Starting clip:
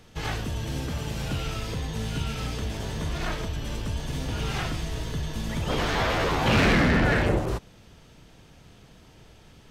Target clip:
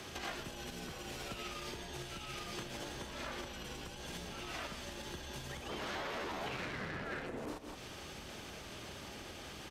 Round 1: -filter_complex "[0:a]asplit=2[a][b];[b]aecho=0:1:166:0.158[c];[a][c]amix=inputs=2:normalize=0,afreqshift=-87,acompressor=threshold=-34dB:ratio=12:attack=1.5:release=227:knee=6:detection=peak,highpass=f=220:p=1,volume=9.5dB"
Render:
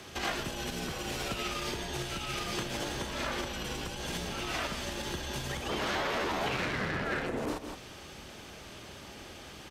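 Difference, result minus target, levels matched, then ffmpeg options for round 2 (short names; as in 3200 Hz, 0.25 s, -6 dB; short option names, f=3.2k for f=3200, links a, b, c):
compressor: peak gain reduction -8.5 dB
-filter_complex "[0:a]asplit=2[a][b];[b]aecho=0:1:166:0.158[c];[a][c]amix=inputs=2:normalize=0,afreqshift=-87,acompressor=threshold=-43.5dB:ratio=12:attack=1.5:release=227:knee=6:detection=peak,highpass=f=220:p=1,volume=9.5dB"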